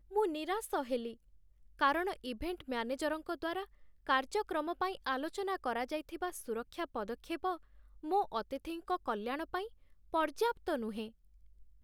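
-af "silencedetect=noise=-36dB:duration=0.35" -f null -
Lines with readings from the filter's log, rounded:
silence_start: 1.09
silence_end: 1.81 | silence_duration: 0.72
silence_start: 3.63
silence_end: 4.09 | silence_duration: 0.46
silence_start: 7.54
silence_end: 8.08 | silence_duration: 0.53
silence_start: 9.63
silence_end: 10.14 | silence_duration: 0.51
silence_start: 11.05
silence_end: 11.84 | silence_duration: 0.78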